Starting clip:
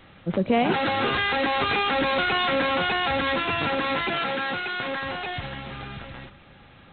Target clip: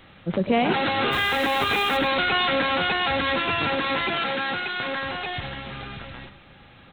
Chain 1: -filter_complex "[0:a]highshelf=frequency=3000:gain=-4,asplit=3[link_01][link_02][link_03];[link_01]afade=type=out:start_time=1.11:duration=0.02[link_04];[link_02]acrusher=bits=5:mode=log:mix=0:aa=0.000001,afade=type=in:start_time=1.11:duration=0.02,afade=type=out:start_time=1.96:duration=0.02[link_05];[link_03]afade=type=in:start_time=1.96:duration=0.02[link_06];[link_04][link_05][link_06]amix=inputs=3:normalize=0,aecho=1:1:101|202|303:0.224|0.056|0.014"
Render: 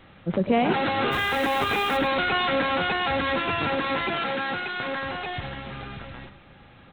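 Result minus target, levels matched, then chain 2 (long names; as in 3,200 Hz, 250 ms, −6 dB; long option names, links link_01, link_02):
4,000 Hz band −2.5 dB
-filter_complex "[0:a]highshelf=frequency=3000:gain=4,asplit=3[link_01][link_02][link_03];[link_01]afade=type=out:start_time=1.11:duration=0.02[link_04];[link_02]acrusher=bits=5:mode=log:mix=0:aa=0.000001,afade=type=in:start_time=1.11:duration=0.02,afade=type=out:start_time=1.96:duration=0.02[link_05];[link_03]afade=type=in:start_time=1.96:duration=0.02[link_06];[link_04][link_05][link_06]amix=inputs=3:normalize=0,aecho=1:1:101|202|303:0.224|0.056|0.014"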